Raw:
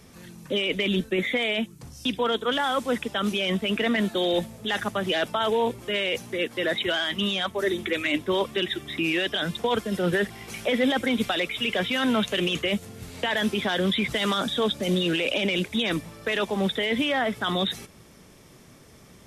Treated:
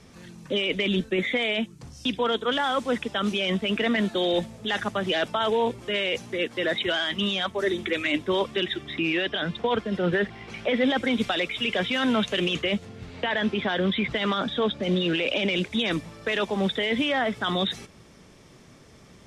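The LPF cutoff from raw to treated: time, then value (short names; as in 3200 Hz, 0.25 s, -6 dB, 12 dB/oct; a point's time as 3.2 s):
8.39 s 7500 Hz
9.31 s 3500 Hz
10.69 s 3500 Hz
11.12 s 7000 Hz
12.44 s 7000 Hz
13.19 s 3300 Hz
14.73 s 3300 Hz
15.76 s 7400 Hz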